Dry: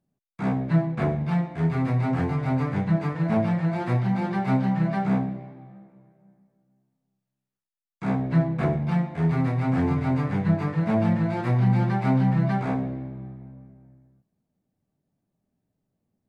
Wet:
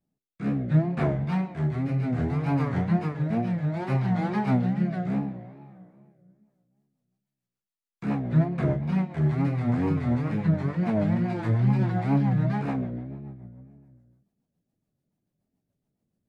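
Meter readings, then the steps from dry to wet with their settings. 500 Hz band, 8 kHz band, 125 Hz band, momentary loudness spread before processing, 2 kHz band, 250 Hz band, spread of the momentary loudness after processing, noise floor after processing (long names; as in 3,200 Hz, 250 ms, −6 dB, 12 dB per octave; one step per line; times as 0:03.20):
−2.5 dB, can't be measured, −1.5 dB, 7 LU, −3.5 dB, −1.5 dB, 8 LU, below −85 dBFS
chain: tape wow and flutter 140 cents
hum removal 97.43 Hz, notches 34
rotating-speaker cabinet horn 0.65 Hz, later 7 Hz, at 0:06.16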